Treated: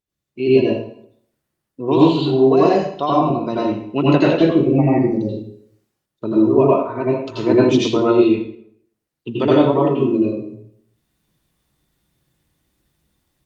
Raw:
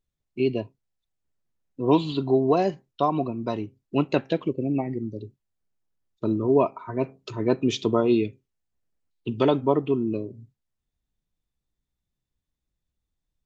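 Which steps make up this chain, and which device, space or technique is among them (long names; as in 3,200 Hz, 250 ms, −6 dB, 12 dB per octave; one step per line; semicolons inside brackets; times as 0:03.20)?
0:01.87–0:03.08: high-shelf EQ 3,700 Hz → 2,700 Hz +4.5 dB
far-field microphone of a smart speaker (convolution reverb RT60 0.60 s, pre-delay 79 ms, DRR −6.5 dB; high-pass filter 140 Hz 6 dB per octave; automatic gain control gain up to 16 dB; level −1 dB; Opus 48 kbit/s 48,000 Hz)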